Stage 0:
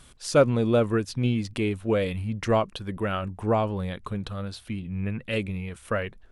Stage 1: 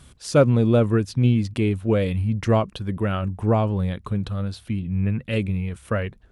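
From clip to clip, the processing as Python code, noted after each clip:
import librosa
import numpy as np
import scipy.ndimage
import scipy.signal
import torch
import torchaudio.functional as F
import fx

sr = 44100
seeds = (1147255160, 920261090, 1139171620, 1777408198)

y = scipy.signal.sosfilt(scipy.signal.butter(2, 54.0, 'highpass', fs=sr, output='sos'), x)
y = fx.low_shelf(y, sr, hz=240.0, db=10.0)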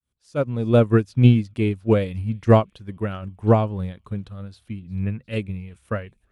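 y = fx.fade_in_head(x, sr, length_s=0.91)
y = fx.echo_wet_highpass(y, sr, ms=356, feedback_pct=61, hz=2800.0, wet_db=-21)
y = fx.upward_expand(y, sr, threshold_db=-27.0, expansion=2.5)
y = F.gain(torch.from_numpy(y), 7.0).numpy()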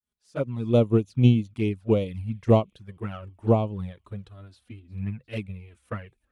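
y = fx.tracing_dist(x, sr, depth_ms=0.032)
y = fx.low_shelf(y, sr, hz=62.0, db=-8.5)
y = fx.env_flanger(y, sr, rest_ms=4.8, full_db=-17.0)
y = F.gain(torch.from_numpy(y), -2.5).numpy()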